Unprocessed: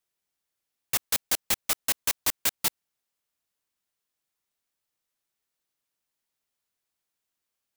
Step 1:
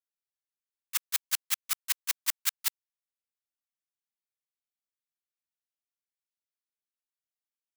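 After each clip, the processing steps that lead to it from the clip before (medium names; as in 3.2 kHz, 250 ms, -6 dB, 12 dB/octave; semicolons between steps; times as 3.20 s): high-pass 1.1 kHz 24 dB/octave; gate -24 dBFS, range -16 dB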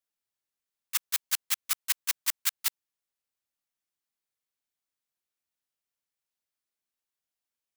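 peak limiter -17.5 dBFS, peak gain reduction 5 dB; trim +4 dB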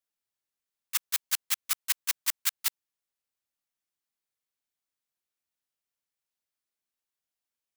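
no audible change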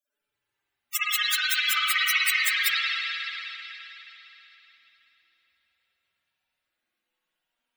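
loudest bins only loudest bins 64; reverberation RT60 3.6 s, pre-delay 48 ms, DRR -15.5 dB; trim +8 dB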